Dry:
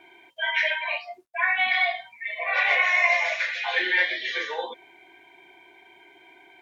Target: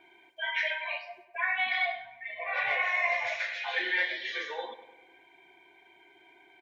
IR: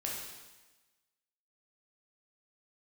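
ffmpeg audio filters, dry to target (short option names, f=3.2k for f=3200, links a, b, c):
-filter_complex "[0:a]asettb=1/sr,asplit=3[a][b][c];[a]atrim=end=1.864[d];[b]atrim=start=1.86:end=3.27,asetpts=PTS-STARTPTS,afade=t=in:d=0.004:c=qsin,afade=t=out:st=1.406:d=0.004:c=qsin,aemphasis=mode=reproduction:type=bsi[e];[c]atrim=start=3.266[f];[d][e]acrossfade=d=0.004:c1=hsin:c2=qsin[g];[g][f]acrossfade=d=0.004:c1=qsin:c2=hsin,asplit=2[h][i];[i]adelay=100,lowpass=f=3k:p=1,volume=-12.5dB,asplit=2[j][k];[k]adelay=100,lowpass=f=3k:p=1,volume=0.54,asplit=2[l][m];[m]adelay=100,lowpass=f=3k:p=1,volume=0.54,asplit=2[n][o];[o]adelay=100,lowpass=f=3k:p=1,volume=0.54,asplit=2[p][q];[q]adelay=100,lowpass=f=3k:p=1,volume=0.54,asplit=2[r][s];[s]adelay=100,lowpass=f=3k:p=1,volume=0.54[t];[j][l][n][p][r][t]amix=inputs=6:normalize=0[u];[h][u]amix=inputs=2:normalize=0,volume=-6.5dB" -ar 44100 -c:a nellymoser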